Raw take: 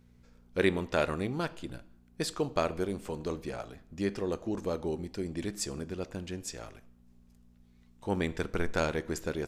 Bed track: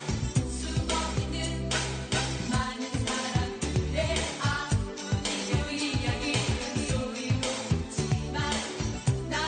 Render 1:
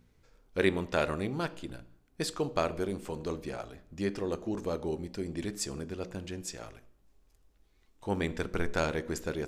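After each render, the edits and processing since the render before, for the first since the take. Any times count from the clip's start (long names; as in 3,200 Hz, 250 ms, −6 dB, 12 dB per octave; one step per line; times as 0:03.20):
hum removal 60 Hz, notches 10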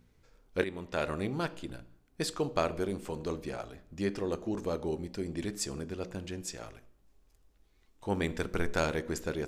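0:00.64–0:01.26: fade in, from −14 dB
0:08.21–0:09.02: high-shelf EQ 9,000 Hz +5.5 dB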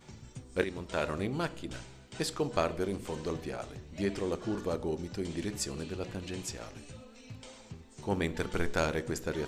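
mix in bed track −19.5 dB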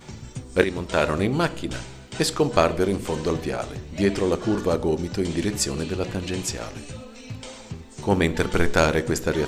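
level +11 dB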